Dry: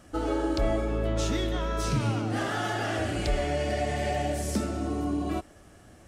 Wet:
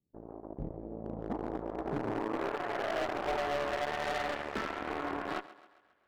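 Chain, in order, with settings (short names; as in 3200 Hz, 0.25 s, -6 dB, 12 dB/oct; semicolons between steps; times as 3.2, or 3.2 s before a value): low-pass sweep 160 Hz -> 1600 Hz, 0.76–4.3; in parallel at -2.5 dB: limiter -26.5 dBFS, peak gain reduction 12 dB; on the sum: thirty-one-band EQ 100 Hz -6 dB, 400 Hz +5 dB, 2000 Hz +4 dB; added harmonics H 3 -14 dB, 4 -20 dB, 7 -24 dB, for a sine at -11 dBFS; vibrato 1.3 Hz 29 cents; overdrive pedal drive 16 dB, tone 5200 Hz, clips at -9.5 dBFS; hard clip -21.5 dBFS, distortion -10 dB; thinning echo 0.135 s, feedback 52%, high-pass 200 Hz, level -16.5 dB; gain -7 dB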